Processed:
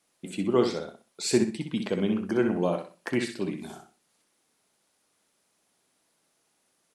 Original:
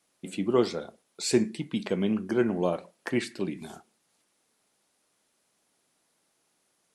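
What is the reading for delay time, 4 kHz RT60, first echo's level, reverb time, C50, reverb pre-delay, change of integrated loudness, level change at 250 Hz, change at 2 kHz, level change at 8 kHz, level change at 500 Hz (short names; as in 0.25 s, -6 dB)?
63 ms, none, -7.0 dB, none, none, none, +0.5 dB, +1.0 dB, +1.0 dB, +1.0 dB, +0.5 dB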